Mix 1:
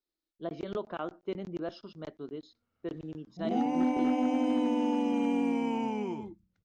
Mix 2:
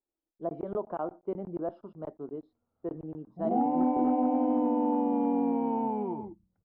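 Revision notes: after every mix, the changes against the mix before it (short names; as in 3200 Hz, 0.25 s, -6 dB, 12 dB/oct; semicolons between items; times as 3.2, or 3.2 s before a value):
master: add synth low-pass 840 Hz, resonance Q 1.8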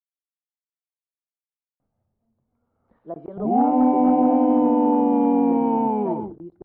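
speech: entry +2.65 s; background +9.0 dB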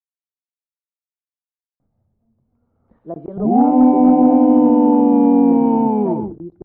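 master: add low shelf 450 Hz +9.5 dB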